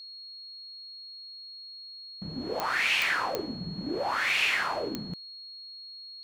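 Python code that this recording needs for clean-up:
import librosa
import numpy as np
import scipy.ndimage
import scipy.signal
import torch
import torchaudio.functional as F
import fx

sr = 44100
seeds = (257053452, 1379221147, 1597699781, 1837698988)

y = fx.fix_declick_ar(x, sr, threshold=10.0)
y = fx.notch(y, sr, hz=4300.0, q=30.0)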